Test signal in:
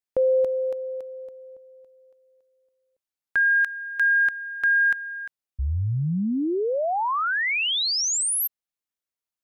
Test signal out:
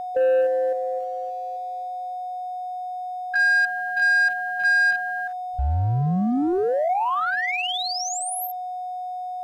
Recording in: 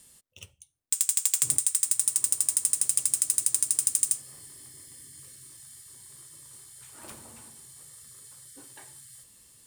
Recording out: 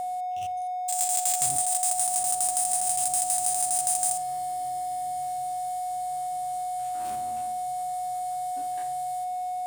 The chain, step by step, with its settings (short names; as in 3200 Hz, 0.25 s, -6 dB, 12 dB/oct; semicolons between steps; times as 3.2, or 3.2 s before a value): stepped spectrum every 50 ms; whine 730 Hz -32 dBFS; sample leveller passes 1